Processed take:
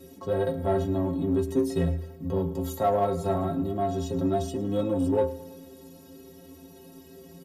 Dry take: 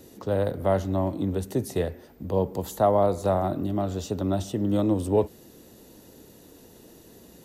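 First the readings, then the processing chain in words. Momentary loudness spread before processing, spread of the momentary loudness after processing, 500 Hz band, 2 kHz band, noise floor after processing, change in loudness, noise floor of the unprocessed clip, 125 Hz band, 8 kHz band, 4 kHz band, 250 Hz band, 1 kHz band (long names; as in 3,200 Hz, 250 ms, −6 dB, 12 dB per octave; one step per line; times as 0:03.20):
7 LU, 6 LU, −1.5 dB, −2.0 dB, −50 dBFS, −1.5 dB, −52 dBFS, −1.5 dB, −3.5 dB, −2.5 dB, −0.5 dB, −1.5 dB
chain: parametric band 210 Hz +5.5 dB 2.5 octaves
stiff-string resonator 80 Hz, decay 0.44 s, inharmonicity 0.03
harmonic and percussive parts rebalanced harmonic +6 dB
in parallel at −6 dB: soft clipping −27.5 dBFS, distortion −10 dB
on the sum: repeating echo 108 ms, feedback 58%, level −19 dB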